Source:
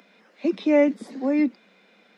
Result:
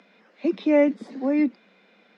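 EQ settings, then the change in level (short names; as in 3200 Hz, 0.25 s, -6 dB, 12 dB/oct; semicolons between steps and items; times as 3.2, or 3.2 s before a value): air absorption 84 m; 0.0 dB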